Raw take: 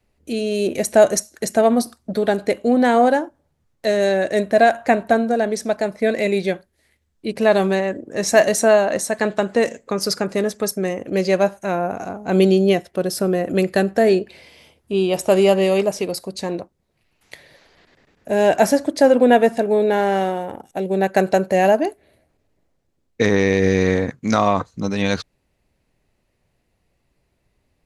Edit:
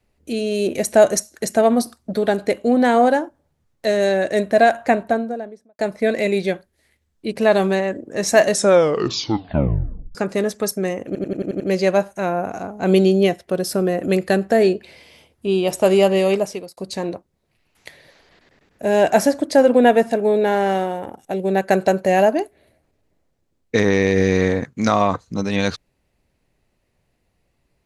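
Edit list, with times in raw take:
0:04.79–0:05.79: fade out and dull
0:08.49: tape stop 1.66 s
0:11.06: stutter 0.09 s, 7 plays
0:15.84–0:16.23: fade out

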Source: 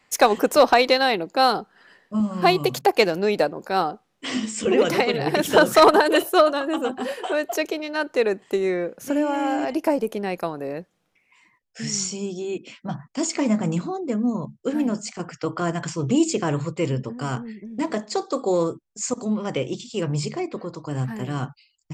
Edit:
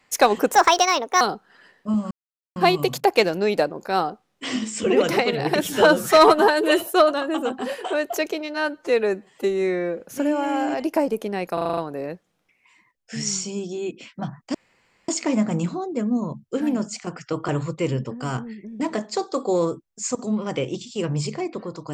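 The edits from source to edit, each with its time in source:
0:00.54–0:01.47: play speed 139%
0:02.37: splice in silence 0.45 s
0:05.42–0:06.26: time-stretch 1.5×
0:07.94–0:08.91: time-stretch 1.5×
0:10.44: stutter 0.04 s, 7 plays
0:13.21: splice in room tone 0.54 s
0:15.61–0:16.47: remove

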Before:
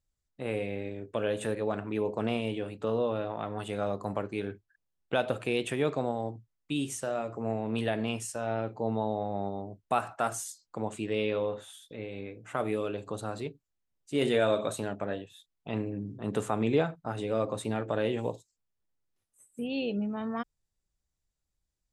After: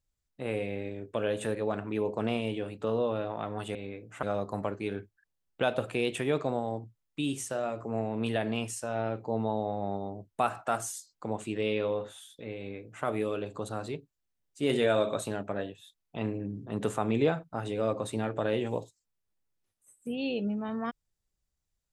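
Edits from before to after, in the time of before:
0:12.09–0:12.57: duplicate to 0:03.75

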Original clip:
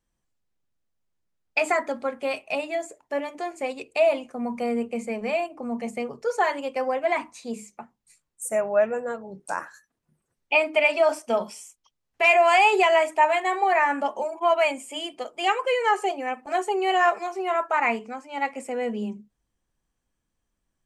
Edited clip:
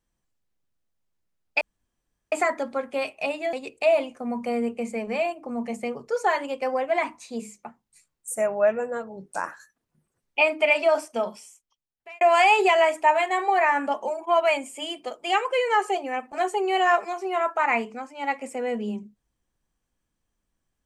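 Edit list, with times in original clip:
0:01.61: splice in room tone 0.71 s
0:02.82–0:03.67: remove
0:10.99–0:12.35: fade out

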